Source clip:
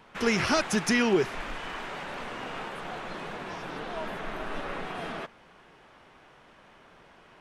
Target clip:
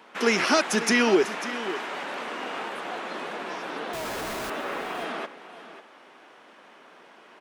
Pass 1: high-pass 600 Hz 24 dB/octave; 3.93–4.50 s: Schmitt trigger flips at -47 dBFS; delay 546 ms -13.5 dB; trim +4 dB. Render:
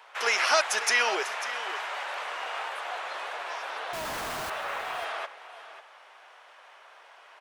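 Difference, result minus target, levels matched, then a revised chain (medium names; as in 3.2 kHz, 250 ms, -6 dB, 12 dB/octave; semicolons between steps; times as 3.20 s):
250 Hz band -18.5 dB
high-pass 230 Hz 24 dB/octave; 3.93–4.50 s: Schmitt trigger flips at -47 dBFS; delay 546 ms -13.5 dB; trim +4 dB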